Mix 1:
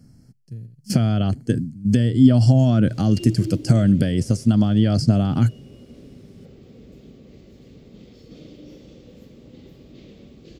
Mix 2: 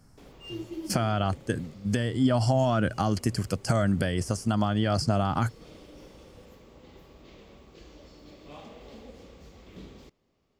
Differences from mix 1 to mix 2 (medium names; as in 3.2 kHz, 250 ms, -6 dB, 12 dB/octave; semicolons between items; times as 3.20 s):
background: entry -2.70 s; master: add ten-band graphic EQ 125 Hz -10 dB, 250 Hz -9 dB, 500 Hz -3 dB, 1 kHz +10 dB, 4 kHz -4 dB